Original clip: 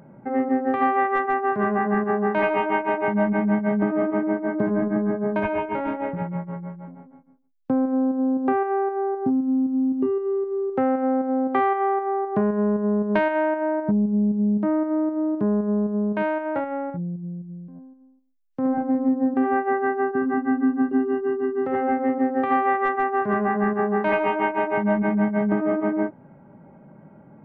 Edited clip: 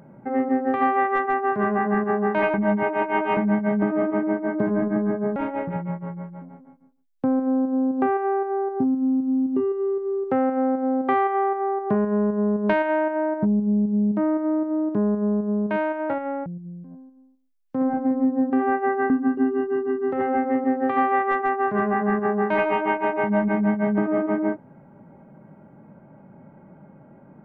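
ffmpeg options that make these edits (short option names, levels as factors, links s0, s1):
-filter_complex "[0:a]asplit=6[s0][s1][s2][s3][s4][s5];[s0]atrim=end=2.542[s6];[s1]atrim=start=2.538:end=3.372,asetpts=PTS-STARTPTS,areverse[s7];[s2]atrim=start=3.368:end=5.362[s8];[s3]atrim=start=5.818:end=16.922[s9];[s4]atrim=start=17.298:end=19.942[s10];[s5]atrim=start=20.638[s11];[s6][s7]acrossfade=d=0.004:c1=hsin:c2=hsin[s12];[s12][s8]acrossfade=d=0.004:c1=hsin:c2=hsin[s13];[s13][s9]acrossfade=d=0.004:c1=hsin:c2=hsin[s14];[s14][s10]acrossfade=d=0.004:c1=hsin:c2=hsin[s15];[s15][s11]acrossfade=d=0.004:c1=hsin:c2=hsin"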